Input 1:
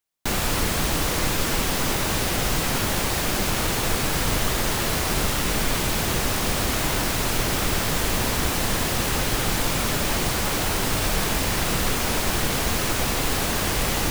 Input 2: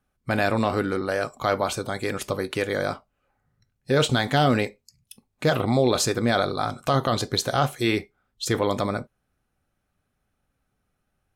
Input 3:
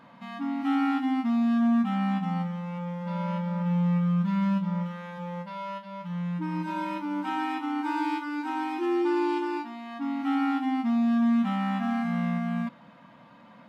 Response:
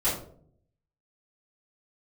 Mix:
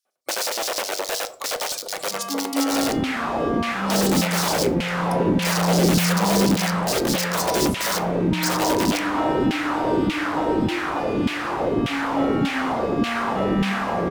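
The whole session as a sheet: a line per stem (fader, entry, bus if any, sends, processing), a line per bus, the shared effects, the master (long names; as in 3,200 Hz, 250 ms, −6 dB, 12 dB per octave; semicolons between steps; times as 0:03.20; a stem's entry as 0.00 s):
+2.5 dB, 2.45 s, no send, tilt shelving filter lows +5 dB, about 790 Hz; automatic gain control; auto-filter band-pass saw down 1.7 Hz 220–3,000 Hz
+1.5 dB, 0.00 s, send −21 dB, wrap-around overflow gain 23.5 dB; auto-filter high-pass square 9.6 Hz 530–5,000 Hz
−2.0 dB, 1.90 s, send −11 dB, mains-hum notches 50/100/150/200/250/300/350 Hz; comb filter 6.2 ms, depth 84%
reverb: on, RT60 0.60 s, pre-delay 3 ms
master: no processing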